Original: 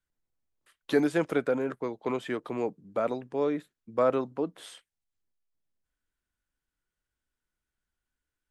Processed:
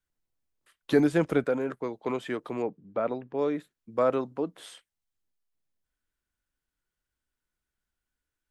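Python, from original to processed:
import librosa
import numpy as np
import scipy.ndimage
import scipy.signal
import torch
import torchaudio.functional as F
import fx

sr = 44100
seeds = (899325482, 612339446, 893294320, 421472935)

y = fx.low_shelf(x, sr, hz=180.0, db=11.5, at=(0.91, 1.44))
y = fx.gaussian_blur(y, sr, sigma=2.1, at=(2.62, 3.39))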